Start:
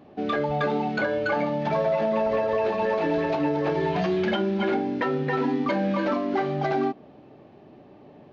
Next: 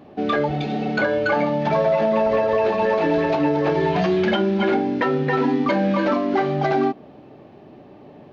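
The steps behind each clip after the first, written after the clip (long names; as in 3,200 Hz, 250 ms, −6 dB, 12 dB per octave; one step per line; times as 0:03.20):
healed spectral selection 0:00.51–0:00.89, 300–2,200 Hz after
level +5 dB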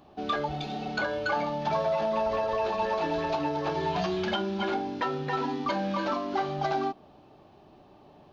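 octave-band graphic EQ 125/250/500/2,000 Hz −9/−10/−10/−11 dB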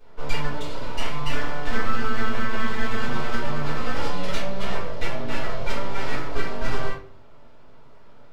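full-wave rectification
rectangular room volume 36 cubic metres, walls mixed, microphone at 1.5 metres
level −6 dB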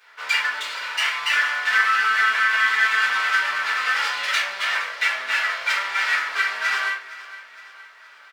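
high-pass with resonance 1,700 Hz, resonance Q 2.2
repeating echo 466 ms, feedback 53%, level −17 dB
level +8 dB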